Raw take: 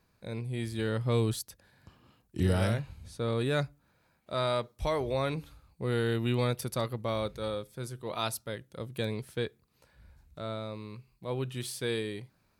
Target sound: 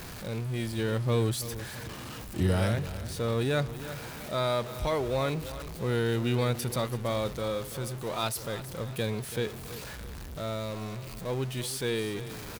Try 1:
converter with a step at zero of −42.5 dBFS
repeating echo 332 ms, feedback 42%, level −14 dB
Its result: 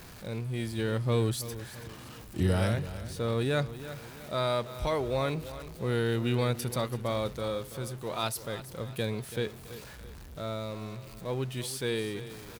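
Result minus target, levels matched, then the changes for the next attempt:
converter with a step at zero: distortion −6 dB
change: converter with a step at zero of −36 dBFS

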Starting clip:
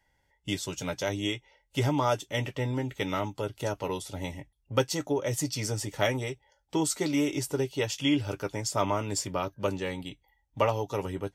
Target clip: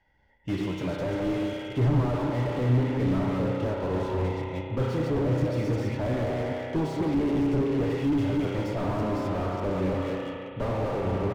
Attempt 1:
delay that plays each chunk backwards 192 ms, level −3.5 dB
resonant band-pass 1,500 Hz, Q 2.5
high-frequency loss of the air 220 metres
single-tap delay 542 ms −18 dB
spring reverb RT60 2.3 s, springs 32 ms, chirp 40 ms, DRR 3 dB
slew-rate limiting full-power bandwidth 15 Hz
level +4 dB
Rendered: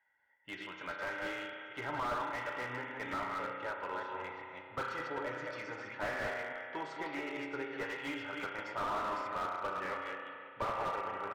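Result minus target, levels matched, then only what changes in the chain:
2,000 Hz band +12.5 dB
remove: resonant band-pass 1,500 Hz, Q 2.5

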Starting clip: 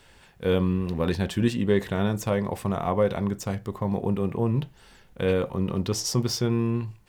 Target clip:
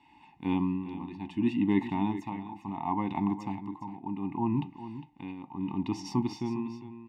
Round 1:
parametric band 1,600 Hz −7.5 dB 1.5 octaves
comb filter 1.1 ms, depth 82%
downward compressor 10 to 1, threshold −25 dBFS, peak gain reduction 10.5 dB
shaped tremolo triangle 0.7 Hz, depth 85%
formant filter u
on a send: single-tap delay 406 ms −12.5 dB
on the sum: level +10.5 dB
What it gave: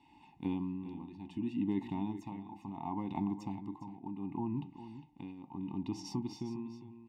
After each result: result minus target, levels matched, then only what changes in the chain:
downward compressor: peak gain reduction +10.5 dB; 2,000 Hz band −5.5 dB
remove: downward compressor 10 to 1, threshold −25 dBFS, peak gain reduction 10.5 dB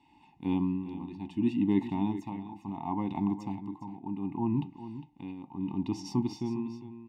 2,000 Hz band −6.0 dB
change: parametric band 1,600 Hz +2 dB 1.5 octaves

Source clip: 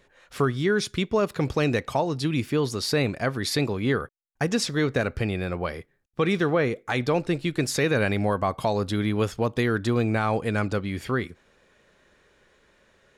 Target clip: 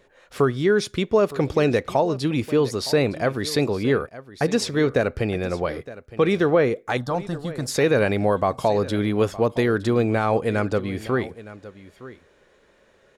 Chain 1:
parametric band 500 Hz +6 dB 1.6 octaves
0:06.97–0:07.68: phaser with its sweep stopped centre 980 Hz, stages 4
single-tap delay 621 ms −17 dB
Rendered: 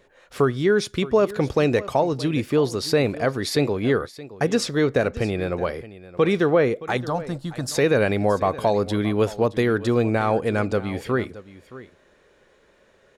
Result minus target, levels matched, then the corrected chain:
echo 293 ms early
parametric band 500 Hz +6 dB 1.6 octaves
0:06.97–0:07.68: phaser with its sweep stopped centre 980 Hz, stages 4
single-tap delay 914 ms −17 dB

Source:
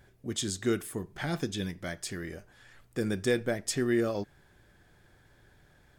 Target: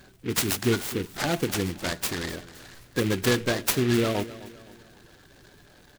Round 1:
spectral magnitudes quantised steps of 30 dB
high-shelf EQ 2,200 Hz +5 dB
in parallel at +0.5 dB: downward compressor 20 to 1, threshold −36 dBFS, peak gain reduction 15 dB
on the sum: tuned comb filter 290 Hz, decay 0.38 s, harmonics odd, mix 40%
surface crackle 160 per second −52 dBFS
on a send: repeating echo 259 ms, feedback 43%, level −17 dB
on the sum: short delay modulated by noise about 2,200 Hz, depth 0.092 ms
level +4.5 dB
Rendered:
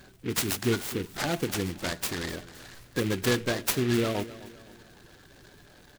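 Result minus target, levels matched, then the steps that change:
downward compressor: peak gain reduction +9 dB
change: downward compressor 20 to 1, threshold −26.5 dBFS, peak gain reduction 6 dB

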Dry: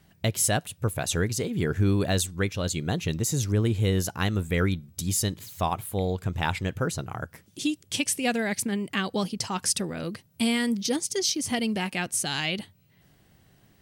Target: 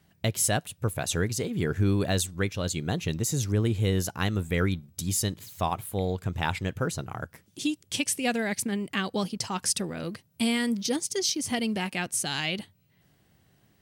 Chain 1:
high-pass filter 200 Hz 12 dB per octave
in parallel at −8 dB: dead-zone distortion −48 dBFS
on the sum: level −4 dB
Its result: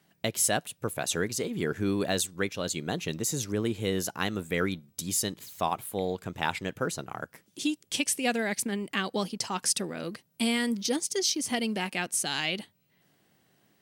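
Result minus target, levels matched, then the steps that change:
125 Hz band −7.5 dB
change: high-pass filter 51 Hz 12 dB per octave

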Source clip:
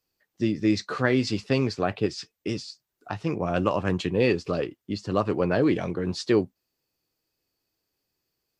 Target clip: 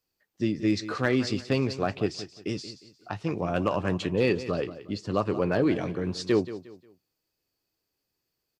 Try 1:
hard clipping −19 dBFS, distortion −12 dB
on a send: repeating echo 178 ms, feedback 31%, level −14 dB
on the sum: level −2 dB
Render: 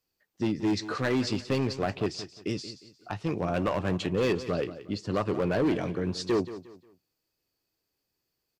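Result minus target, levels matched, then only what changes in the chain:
hard clipping: distortion +17 dB
change: hard clipping −12 dBFS, distortion −28 dB

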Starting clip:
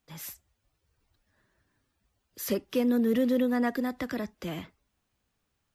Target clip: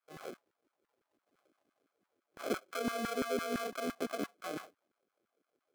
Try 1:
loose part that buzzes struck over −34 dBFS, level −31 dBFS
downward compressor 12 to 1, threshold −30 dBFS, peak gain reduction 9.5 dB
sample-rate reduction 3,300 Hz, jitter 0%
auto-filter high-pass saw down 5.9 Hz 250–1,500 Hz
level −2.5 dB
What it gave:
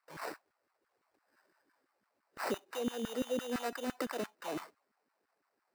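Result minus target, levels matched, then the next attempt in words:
sample-rate reduction: distortion −11 dB
loose part that buzzes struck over −34 dBFS, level −31 dBFS
downward compressor 12 to 1, threshold −30 dBFS, peak gain reduction 9.5 dB
sample-rate reduction 930 Hz, jitter 0%
auto-filter high-pass saw down 5.9 Hz 250–1,500 Hz
level −2.5 dB

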